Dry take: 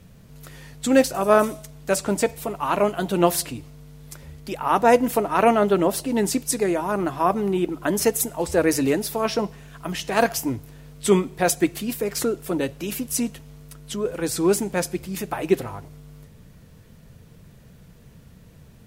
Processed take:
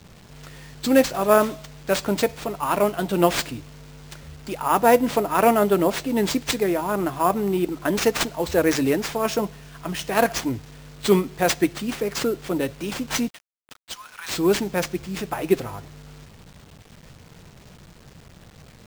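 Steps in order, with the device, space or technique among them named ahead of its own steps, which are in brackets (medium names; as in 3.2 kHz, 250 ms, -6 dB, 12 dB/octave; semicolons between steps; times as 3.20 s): 13.28–14.34 s: steep high-pass 930 Hz 48 dB/octave; early 8-bit sampler (sample-rate reducer 12 kHz, jitter 0%; bit crusher 8-bit)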